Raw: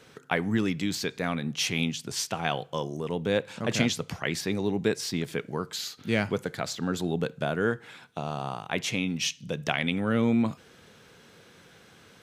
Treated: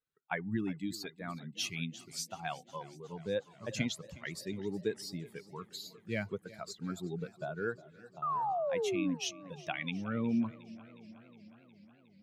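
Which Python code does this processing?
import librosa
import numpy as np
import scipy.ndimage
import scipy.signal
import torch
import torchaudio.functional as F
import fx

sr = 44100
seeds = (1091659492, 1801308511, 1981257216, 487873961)

y = fx.bin_expand(x, sr, power=2.0)
y = fx.echo_wet_bandpass(y, sr, ms=357, feedback_pct=54, hz=600.0, wet_db=-21.0)
y = fx.spec_paint(y, sr, seeds[0], shape='fall', start_s=8.22, length_s=0.93, low_hz=250.0, high_hz=1300.0, level_db=-28.0)
y = fx.echo_warbled(y, sr, ms=364, feedback_pct=70, rate_hz=2.8, cents=62, wet_db=-20)
y = y * librosa.db_to_amplitude(-5.0)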